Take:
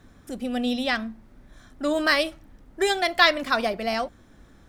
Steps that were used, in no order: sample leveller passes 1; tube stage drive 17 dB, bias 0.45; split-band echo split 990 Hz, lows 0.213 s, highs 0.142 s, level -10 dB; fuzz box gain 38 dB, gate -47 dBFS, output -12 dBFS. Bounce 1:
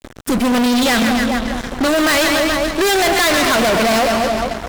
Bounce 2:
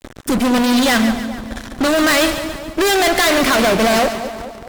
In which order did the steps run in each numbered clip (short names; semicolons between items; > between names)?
tube stage > split-band echo > sample leveller > fuzz box; tube stage > sample leveller > fuzz box > split-band echo